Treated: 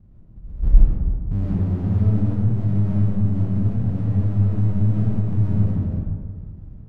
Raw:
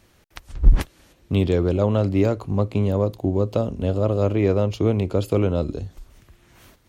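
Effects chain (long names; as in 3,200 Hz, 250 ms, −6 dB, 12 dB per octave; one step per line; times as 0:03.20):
inverse Chebyshev low-pass filter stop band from 1,200 Hz, stop band 80 dB
power curve on the samples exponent 0.7
comb and all-pass reverb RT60 1.8 s, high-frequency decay 0.4×, pre-delay 50 ms, DRR −6 dB
level −7 dB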